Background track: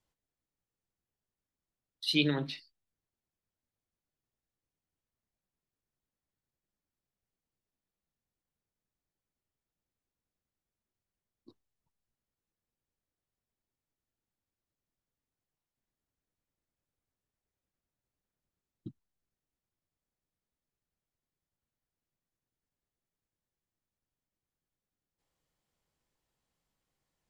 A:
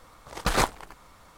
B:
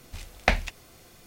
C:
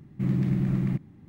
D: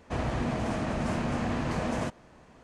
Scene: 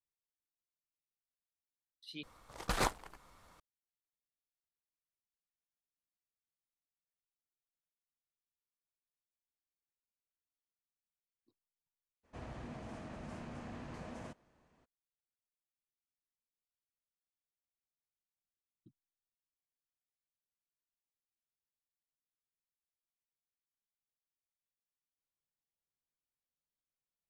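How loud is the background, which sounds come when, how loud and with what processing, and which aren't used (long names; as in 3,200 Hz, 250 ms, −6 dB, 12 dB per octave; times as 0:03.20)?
background track −19.5 dB
0:02.23: overwrite with A −9.5 dB + downsampling to 32,000 Hz
0:12.23: mix in D −17 dB, fades 0.02 s
not used: B, C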